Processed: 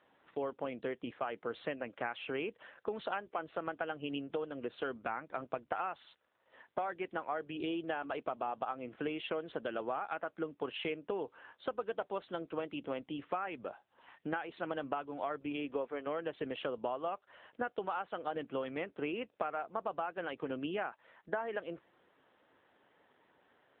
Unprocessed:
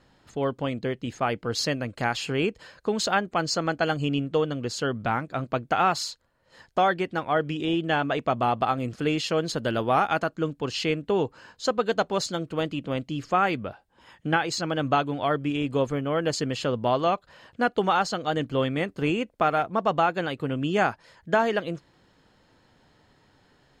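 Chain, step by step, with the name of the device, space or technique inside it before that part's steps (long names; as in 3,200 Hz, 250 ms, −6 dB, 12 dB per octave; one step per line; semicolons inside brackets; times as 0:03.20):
0:15.55–0:16.05: high-pass filter 130 Hz → 420 Hz 12 dB per octave
voicemail (band-pass filter 340–3,100 Hz; downward compressor 8 to 1, threshold −29 dBFS, peak gain reduction 12.5 dB; level −3.5 dB; AMR narrowband 7.95 kbit/s 8,000 Hz)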